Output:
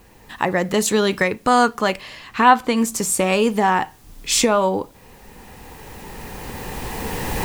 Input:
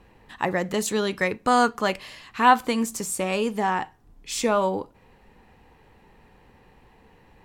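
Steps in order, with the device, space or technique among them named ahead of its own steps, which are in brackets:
cheap recorder with automatic gain (white noise bed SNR 37 dB; camcorder AGC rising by 9.3 dB per second)
0:02.01–0:02.77: high-shelf EQ 6,900 Hz −8 dB
level +4 dB

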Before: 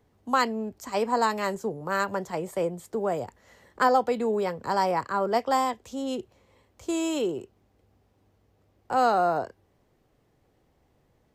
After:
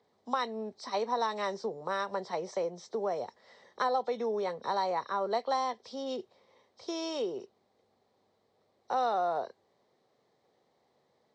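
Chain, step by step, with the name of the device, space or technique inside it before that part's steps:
hearing aid with frequency lowering (hearing-aid frequency compression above 3,100 Hz 1.5 to 1; downward compressor 2.5 to 1, threshold −28 dBFS, peak gain reduction 8 dB; loudspeaker in its box 290–6,700 Hz, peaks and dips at 300 Hz −9 dB, 1,500 Hz −6 dB, 2,700 Hz −9 dB, 4,000 Hz +6 dB)

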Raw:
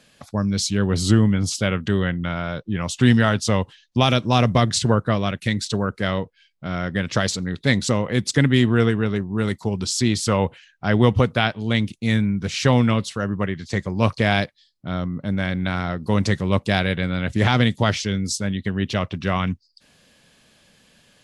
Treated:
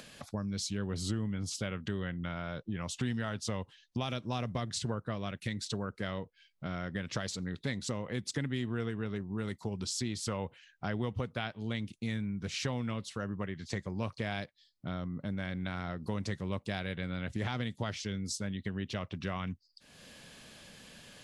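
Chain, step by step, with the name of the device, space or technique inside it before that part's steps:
upward and downward compression (upward compression, threshold −37 dBFS; downward compressor 3 to 1, threshold −29 dBFS, peak gain reduction 14 dB)
level −6 dB

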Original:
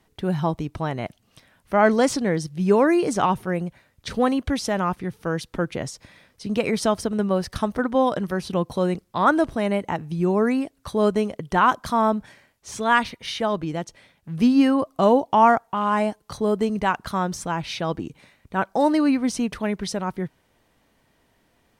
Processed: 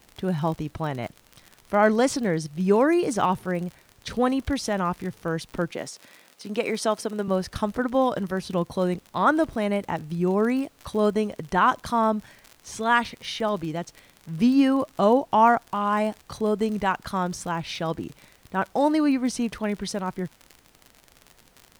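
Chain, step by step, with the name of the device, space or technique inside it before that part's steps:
vinyl LP (tape wow and flutter 17 cents; surface crackle 53 per second −30 dBFS; pink noise bed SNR 35 dB)
0:05.71–0:07.28: high-pass filter 260 Hz 12 dB per octave
level −2 dB

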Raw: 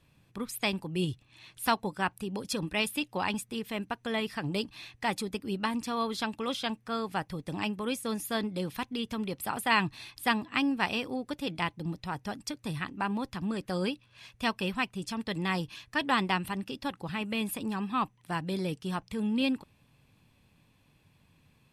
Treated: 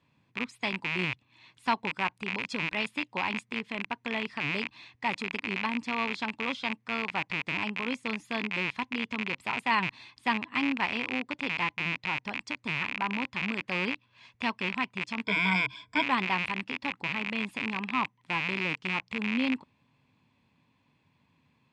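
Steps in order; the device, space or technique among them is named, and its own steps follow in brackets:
car door speaker with a rattle (loose part that buzzes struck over −47 dBFS, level −16 dBFS; loudspeaker in its box 93–6,700 Hz, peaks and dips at 250 Hz +6 dB, 980 Hz +8 dB, 2,100 Hz +5 dB, 5,700 Hz −4 dB)
0:15.24–0:16.03: EQ curve with evenly spaced ripples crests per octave 1.7, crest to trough 18 dB
level −5 dB

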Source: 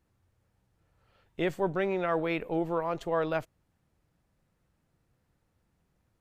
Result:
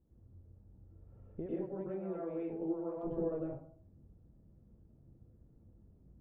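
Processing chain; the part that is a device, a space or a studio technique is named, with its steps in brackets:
television next door (downward compressor 4 to 1, threshold −42 dBFS, peak gain reduction 15.5 dB; low-pass filter 410 Hz 12 dB per octave; convolution reverb RT60 0.55 s, pre-delay 94 ms, DRR −7 dB)
0:01.46–0:03.03: spectral tilt +3 dB per octave
level +2.5 dB

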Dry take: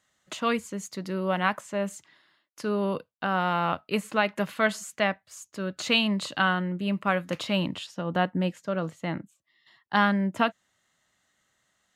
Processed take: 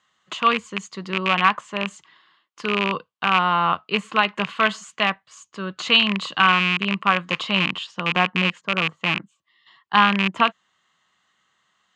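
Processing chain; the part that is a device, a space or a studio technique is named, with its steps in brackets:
0:08.61–0:09.01: flat-topped bell 4,500 Hz −12.5 dB 2.7 octaves
car door speaker with a rattle (loose part that buzzes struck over −32 dBFS, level −15 dBFS; loudspeaker in its box 100–6,800 Hz, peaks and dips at 110 Hz −9 dB, 270 Hz −7 dB, 590 Hz −7 dB, 1,100 Hz +10 dB, 3,000 Hz +6 dB, 5,600 Hz −5 dB)
level +3.5 dB

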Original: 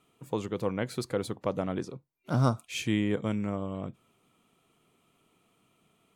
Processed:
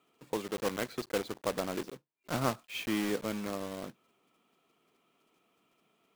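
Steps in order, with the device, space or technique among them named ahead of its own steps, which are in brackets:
early digital voice recorder (band-pass filter 240–3,800 Hz; one scale factor per block 3 bits)
level −2 dB

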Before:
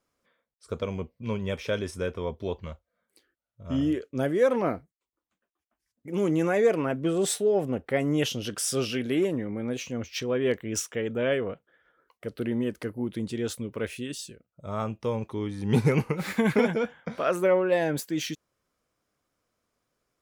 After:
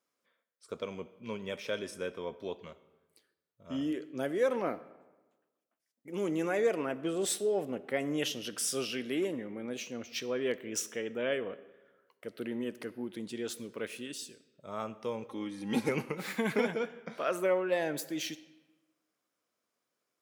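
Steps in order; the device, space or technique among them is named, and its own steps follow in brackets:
high-pass filter 210 Hz 12 dB per octave
0:15.28–0:15.89: comb filter 3.7 ms, depth 69%
presence and air boost (parametric band 3,200 Hz +2.5 dB 1.9 octaves; high-shelf EQ 9,400 Hz +5 dB)
comb and all-pass reverb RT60 1.2 s, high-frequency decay 0.7×, pre-delay 20 ms, DRR 16 dB
level −6.5 dB

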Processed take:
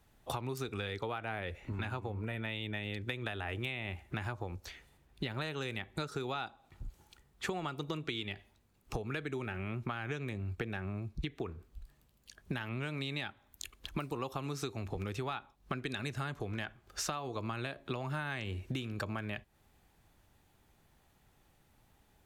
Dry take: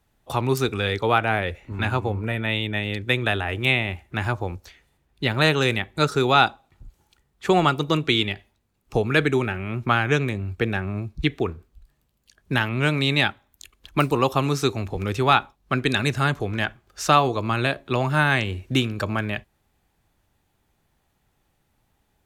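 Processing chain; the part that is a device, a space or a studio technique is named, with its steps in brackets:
serial compression, leveller first (downward compressor 3 to 1, threshold −23 dBFS, peak gain reduction 9.5 dB; downward compressor 5 to 1, threshold −37 dBFS, peak gain reduction 16 dB)
level +1 dB

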